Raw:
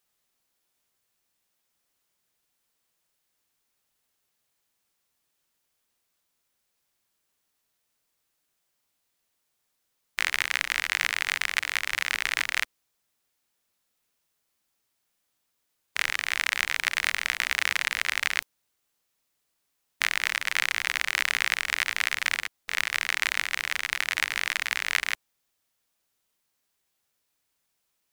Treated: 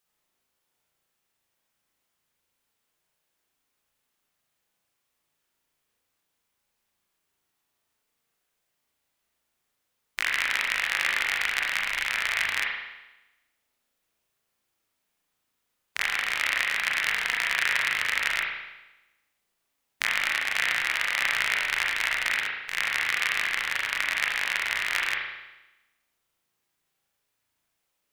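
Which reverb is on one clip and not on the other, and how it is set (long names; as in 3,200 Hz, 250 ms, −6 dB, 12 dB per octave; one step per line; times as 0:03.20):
spring reverb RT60 1 s, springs 36 ms, chirp 70 ms, DRR −2 dB
level −2.5 dB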